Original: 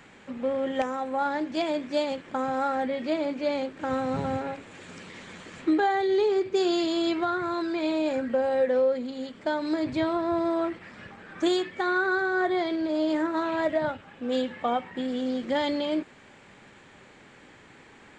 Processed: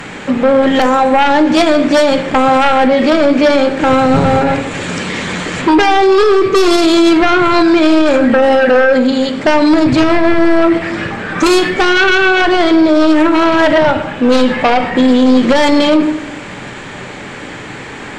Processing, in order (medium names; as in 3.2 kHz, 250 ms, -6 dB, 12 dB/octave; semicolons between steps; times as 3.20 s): sine folder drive 7 dB, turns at -15.5 dBFS; simulated room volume 330 m³, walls mixed, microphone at 0.4 m; loudness maximiser +15.5 dB; trim -2.5 dB